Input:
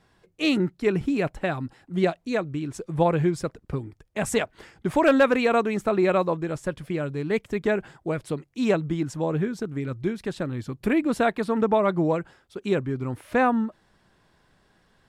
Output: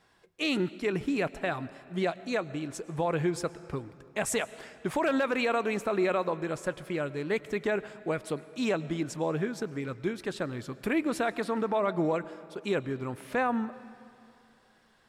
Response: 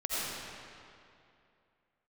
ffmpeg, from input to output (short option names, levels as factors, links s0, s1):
-filter_complex "[0:a]lowshelf=f=290:g=-10,alimiter=limit=0.112:level=0:latency=1:release=57,asplit=2[s0][s1];[1:a]atrim=start_sample=2205,adelay=25[s2];[s1][s2]afir=irnorm=-1:irlink=0,volume=0.0631[s3];[s0][s3]amix=inputs=2:normalize=0"